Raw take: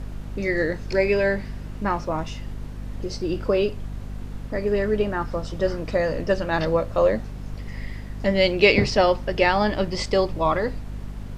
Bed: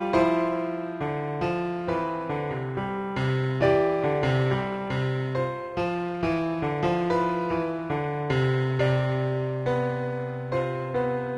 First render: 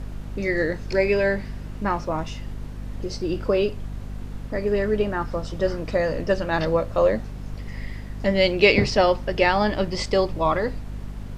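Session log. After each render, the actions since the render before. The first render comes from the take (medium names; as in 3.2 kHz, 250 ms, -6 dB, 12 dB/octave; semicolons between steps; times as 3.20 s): no audible change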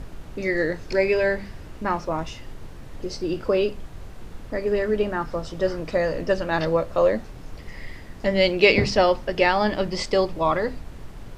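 hum notches 50/100/150/200/250 Hz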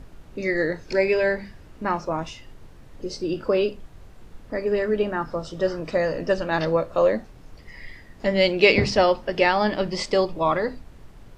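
noise print and reduce 7 dB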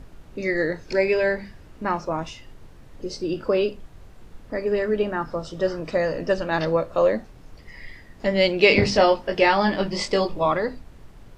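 8.69–10.46 s: doubling 20 ms -4 dB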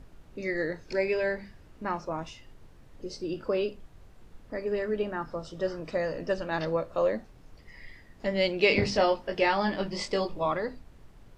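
trim -7 dB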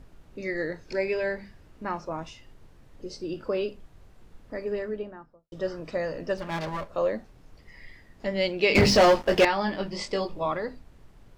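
4.61–5.52 s: studio fade out; 6.37–6.89 s: comb filter that takes the minimum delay 5 ms; 8.75–9.45 s: waveshaping leveller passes 3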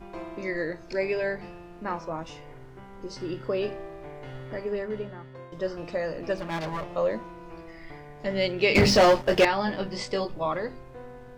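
add bed -17.5 dB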